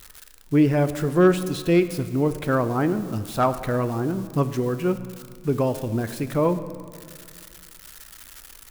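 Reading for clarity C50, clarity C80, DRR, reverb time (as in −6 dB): 12.5 dB, 13.5 dB, 11.0 dB, 2.1 s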